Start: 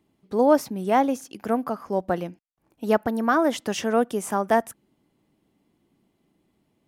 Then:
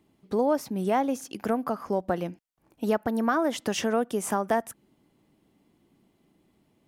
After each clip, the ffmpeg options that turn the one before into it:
-af "acompressor=threshold=-27dB:ratio=2.5,volume=2.5dB"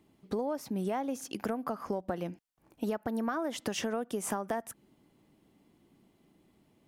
-af "acompressor=threshold=-30dB:ratio=6"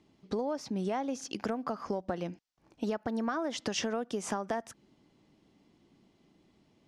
-af "lowpass=f=5.6k:t=q:w=1.7"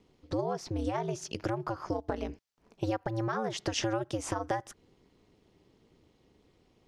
-af "aeval=exprs='val(0)*sin(2*PI*110*n/s)':c=same,volume=3.5dB"

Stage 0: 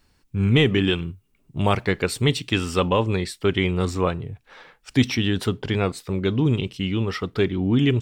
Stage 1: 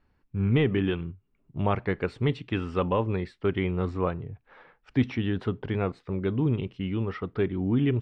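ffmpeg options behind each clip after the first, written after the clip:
-af "lowpass=1.9k,volume=-5dB"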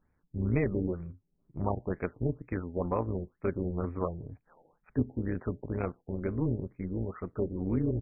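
-af "tremolo=f=170:d=0.71,afftfilt=real='re*lt(b*sr/1024,850*pow(2600/850,0.5+0.5*sin(2*PI*2.1*pts/sr)))':imag='im*lt(b*sr/1024,850*pow(2600/850,0.5+0.5*sin(2*PI*2.1*pts/sr)))':win_size=1024:overlap=0.75,volume=-2dB"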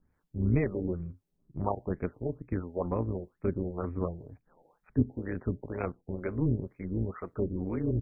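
-filter_complex "[0:a]acrossover=split=410[a][b];[a]aeval=exprs='val(0)*(1-0.7/2+0.7/2*cos(2*PI*2*n/s))':c=same[c];[b]aeval=exprs='val(0)*(1-0.7/2-0.7/2*cos(2*PI*2*n/s))':c=same[d];[c][d]amix=inputs=2:normalize=0,volume=3.5dB"

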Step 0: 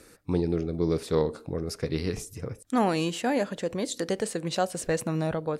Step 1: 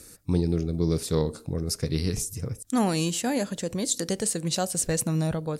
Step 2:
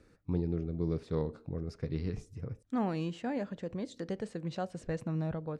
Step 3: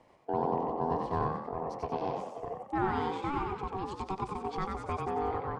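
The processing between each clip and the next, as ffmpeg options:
-af "bass=f=250:g=9,treble=f=4k:g=14,volume=-3dB"
-af "lowpass=2.1k,volume=-8dB"
-filter_complex "[0:a]bass=f=250:g=-2,treble=f=4k:g=-6,aeval=exprs='val(0)*sin(2*PI*570*n/s)':c=same,asplit=7[a][b][c][d][e][f][g];[b]adelay=92,afreqshift=50,volume=-3.5dB[h];[c]adelay=184,afreqshift=100,volume=-10.2dB[i];[d]adelay=276,afreqshift=150,volume=-17dB[j];[e]adelay=368,afreqshift=200,volume=-23.7dB[k];[f]adelay=460,afreqshift=250,volume=-30.5dB[l];[g]adelay=552,afreqshift=300,volume=-37.2dB[m];[a][h][i][j][k][l][m]amix=inputs=7:normalize=0,volume=4dB"

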